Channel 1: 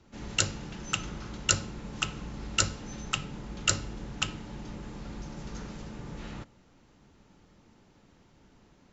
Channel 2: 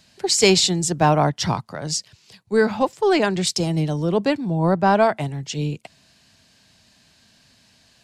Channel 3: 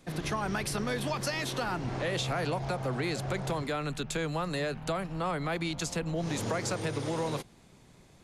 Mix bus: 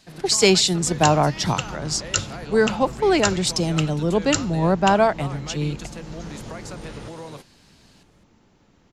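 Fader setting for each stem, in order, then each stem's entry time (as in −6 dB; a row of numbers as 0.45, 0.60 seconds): +2.0, −0.5, −5.0 decibels; 0.65, 0.00, 0.00 seconds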